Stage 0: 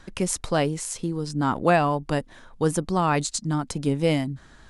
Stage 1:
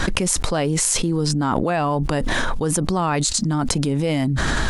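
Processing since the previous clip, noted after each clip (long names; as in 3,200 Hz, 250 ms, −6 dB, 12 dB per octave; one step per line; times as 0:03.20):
envelope flattener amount 100%
level −4 dB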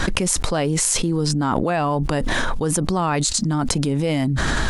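no processing that can be heard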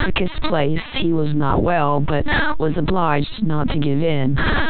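mu-law and A-law mismatch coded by A
linear-prediction vocoder at 8 kHz pitch kept
level +4.5 dB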